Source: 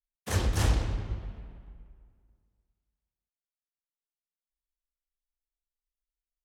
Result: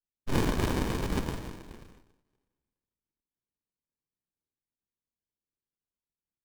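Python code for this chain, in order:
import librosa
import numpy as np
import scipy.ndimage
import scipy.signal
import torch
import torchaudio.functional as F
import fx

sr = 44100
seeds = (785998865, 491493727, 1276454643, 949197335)

y = np.r_[np.sort(x[:len(x) // 128 * 128].reshape(-1, 128), axis=1).ravel(), x[len(x) // 128 * 128:]]
y = scipy.signal.sosfilt(scipy.signal.butter(2, 4900.0, 'lowpass', fs=sr, output='sos'), y)
y = fx.low_shelf(y, sr, hz=490.0, db=-8.5)
y = y + 0.34 * np.pad(y, (int(1.6 * sr / 1000.0), 0))[:len(y)]
y = fx.leveller(y, sr, passes=3)
y = fx.rider(y, sr, range_db=10, speed_s=0.5)
y = fx.rev_schroeder(y, sr, rt60_s=0.55, comb_ms=25, drr_db=-3.0)
y = fx.noise_vocoder(y, sr, seeds[0], bands=1)
y = fx.running_max(y, sr, window=65)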